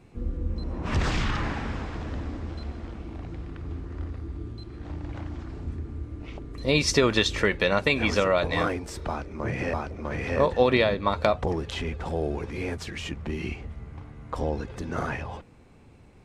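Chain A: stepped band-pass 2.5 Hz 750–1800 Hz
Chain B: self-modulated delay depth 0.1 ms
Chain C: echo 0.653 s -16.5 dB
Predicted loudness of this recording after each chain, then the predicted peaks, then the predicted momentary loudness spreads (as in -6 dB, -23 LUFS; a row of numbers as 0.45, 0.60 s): -38.0, -28.5, -28.0 LUFS; -17.5, -6.0, -5.5 dBFS; 22, 16, 16 LU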